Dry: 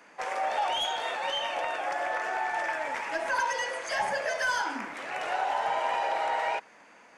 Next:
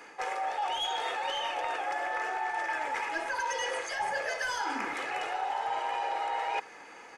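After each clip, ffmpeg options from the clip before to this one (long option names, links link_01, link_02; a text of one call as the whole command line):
ffmpeg -i in.wav -af "aecho=1:1:2.4:0.51,areverse,acompressor=threshold=-35dB:ratio=6,areverse,volume=5dB" out.wav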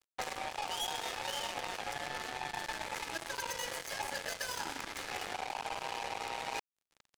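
ffmpeg -i in.wav -filter_complex "[0:a]acrossover=split=590|3500[link_01][link_02][link_03];[link_01]acompressor=threshold=-48dB:ratio=4[link_04];[link_02]acompressor=threshold=-43dB:ratio=4[link_05];[link_03]acompressor=threshold=-44dB:ratio=4[link_06];[link_04][link_05][link_06]amix=inputs=3:normalize=0,acrusher=bits=5:mix=0:aa=0.5,volume=2.5dB" out.wav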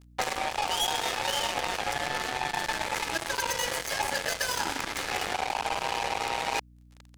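ffmpeg -i in.wav -af "aeval=exprs='val(0)+0.000794*(sin(2*PI*60*n/s)+sin(2*PI*2*60*n/s)/2+sin(2*PI*3*60*n/s)/3+sin(2*PI*4*60*n/s)/4+sin(2*PI*5*60*n/s)/5)':channel_layout=same,volume=9dB" out.wav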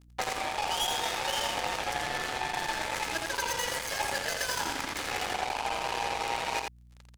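ffmpeg -i in.wav -af "aecho=1:1:85:0.596,volume=-3dB" out.wav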